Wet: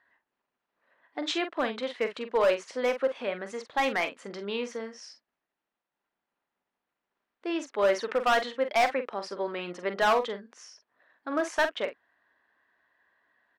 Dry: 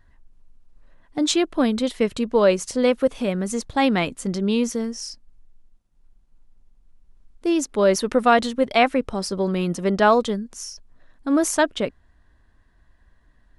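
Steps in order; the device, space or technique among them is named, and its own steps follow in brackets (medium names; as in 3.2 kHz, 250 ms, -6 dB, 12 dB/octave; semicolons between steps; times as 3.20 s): megaphone (band-pass 540–3100 Hz; peaking EQ 1.8 kHz +4 dB 0.58 oct; hard clipper -15.5 dBFS, distortion -10 dB; doubling 45 ms -9.5 dB); trim -3 dB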